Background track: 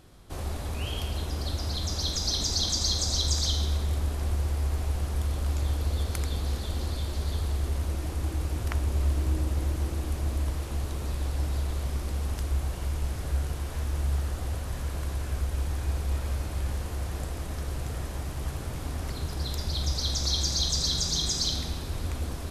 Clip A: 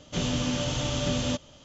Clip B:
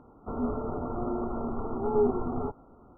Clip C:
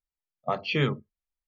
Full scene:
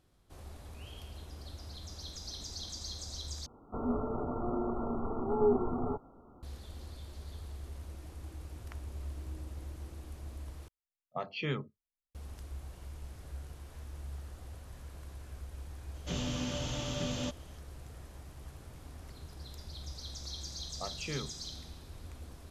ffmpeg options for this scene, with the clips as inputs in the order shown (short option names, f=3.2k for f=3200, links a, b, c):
-filter_complex "[3:a]asplit=2[a][b];[0:a]volume=-15.5dB,asplit=3[c][d][e];[c]atrim=end=3.464[f];[2:a]atrim=end=2.97,asetpts=PTS-STARTPTS,volume=-2.5dB[g];[d]atrim=start=6.426:end=10.684[h];[a]atrim=end=1.47,asetpts=PTS-STARTPTS,volume=-9.5dB[i];[e]atrim=start=12.146[j];[1:a]atrim=end=1.64,asetpts=PTS-STARTPTS,volume=-8dB,afade=t=in:d=0.004:c=hsin,afade=t=out:st=1.636:d=0.004:c=hsin,adelay=15940[k];[b]atrim=end=1.47,asetpts=PTS-STARTPTS,volume=-13.5dB,afade=t=in:d=0.004:c=hsin,afade=t=out:st=1.466:d=0.004:c=hsin,adelay=20330[l];[f][g]acrossfade=d=0.004:c1=hsin:c2=hsin[m];[m][h]acrossfade=d=0.004:c1=hsin:c2=hsin[n];[n][i]acrossfade=d=0.004:c1=hsin:c2=hsin[o];[o][j]acrossfade=d=0.004:c1=hsin:c2=hsin[p];[p][k][l]amix=inputs=3:normalize=0"